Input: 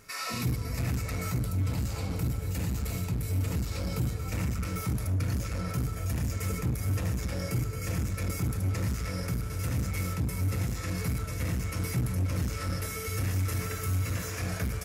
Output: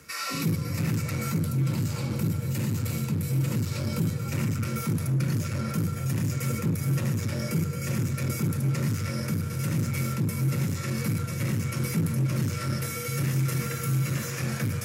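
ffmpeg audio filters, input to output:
-af "equalizer=f=680:w=4.3:g=-9,areverse,acompressor=mode=upward:threshold=-37dB:ratio=2.5,areverse,afreqshift=40,volume=3dB"

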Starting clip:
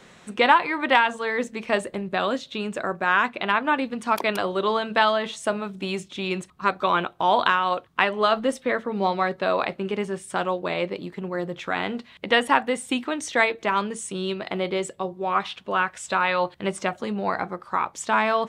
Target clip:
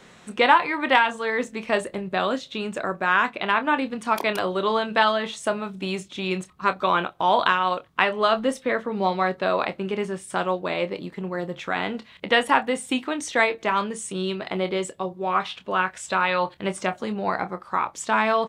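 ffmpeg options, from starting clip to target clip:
-filter_complex "[0:a]asplit=2[a][b];[b]adelay=27,volume=-11.5dB[c];[a][c]amix=inputs=2:normalize=0"

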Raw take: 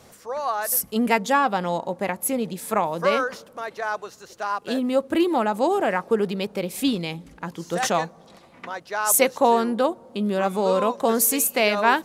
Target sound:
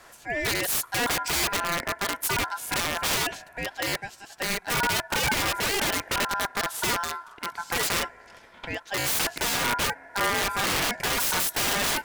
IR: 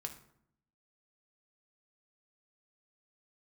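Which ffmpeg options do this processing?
-af "aeval=exprs='(mod(10*val(0)+1,2)-1)/10':c=same,aeval=exprs='val(0)*sin(2*PI*1200*n/s)':c=same,volume=2.5dB"

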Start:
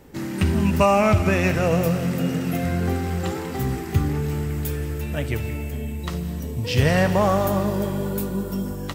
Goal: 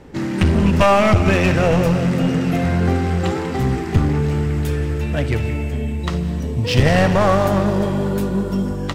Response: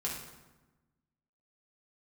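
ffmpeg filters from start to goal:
-af "aeval=exprs='clip(val(0),-1,0.0944)':c=same,adynamicsmooth=sensitivity=4:basefreq=6.1k,volume=6.5dB"

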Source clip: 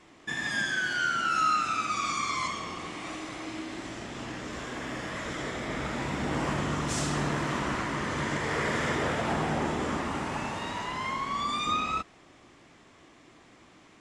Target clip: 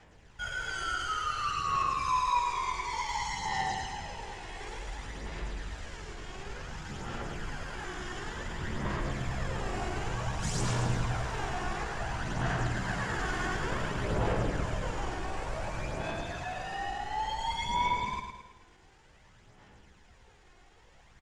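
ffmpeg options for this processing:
-filter_complex "[0:a]atempo=0.66,afreqshift=-270,aphaser=in_gain=1:out_gain=1:delay=2.8:decay=0.49:speed=0.56:type=sinusoidal,asplit=2[a][b];[b]aecho=0:1:108|216|324|432|540|648:0.501|0.241|0.115|0.0554|0.0266|0.0128[c];[a][c]amix=inputs=2:normalize=0,volume=-5.5dB"

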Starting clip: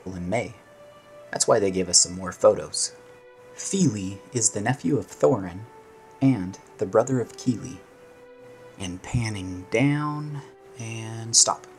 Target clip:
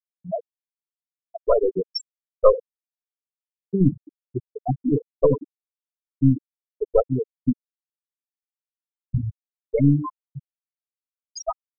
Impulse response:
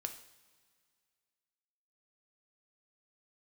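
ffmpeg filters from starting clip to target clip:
-filter_complex "[0:a]asplit=2[a][b];[1:a]atrim=start_sample=2205,lowpass=4.5k[c];[b][c]afir=irnorm=-1:irlink=0,volume=5.5dB[d];[a][d]amix=inputs=2:normalize=0,aeval=exprs='1.5*(cos(1*acos(clip(val(0)/1.5,-1,1)))-cos(1*PI/2))+0.299*(cos(4*acos(clip(val(0)/1.5,-1,1)))-cos(4*PI/2))+0.0188*(cos(5*acos(clip(val(0)/1.5,-1,1)))-cos(5*PI/2))':c=same,afftfilt=real='re*gte(hypot(re,im),1)':imag='im*gte(hypot(re,im),1)':win_size=1024:overlap=0.75,volume=-5.5dB"

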